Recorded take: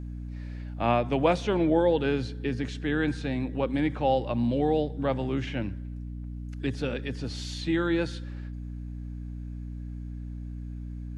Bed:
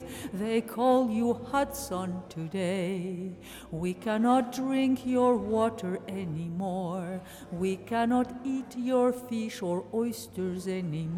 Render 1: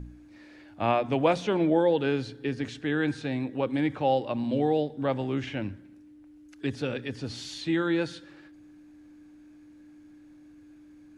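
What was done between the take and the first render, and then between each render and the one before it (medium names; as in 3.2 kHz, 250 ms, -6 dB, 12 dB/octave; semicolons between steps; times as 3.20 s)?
de-hum 60 Hz, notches 4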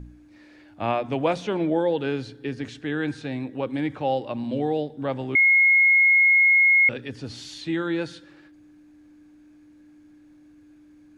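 5.35–6.89 s: bleep 2.16 kHz -13.5 dBFS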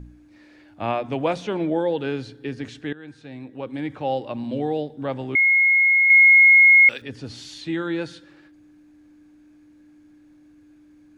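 2.93–4.16 s: fade in, from -18.5 dB; 6.10–7.02 s: tilt EQ +4.5 dB/octave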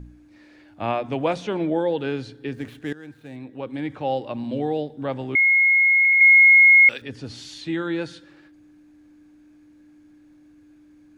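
2.53–3.36 s: median filter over 9 samples; 5.97 s: stutter in place 0.08 s, 3 plays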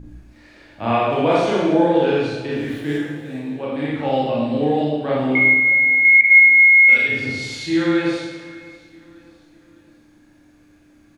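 feedback delay 602 ms, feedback 44%, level -21 dB; Schroeder reverb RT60 1.1 s, combs from 27 ms, DRR -7 dB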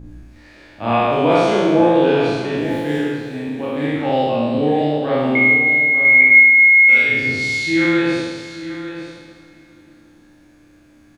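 spectral sustain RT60 1.18 s; delay 894 ms -12 dB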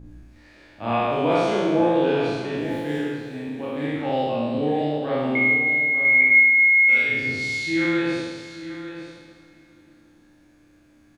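trim -6 dB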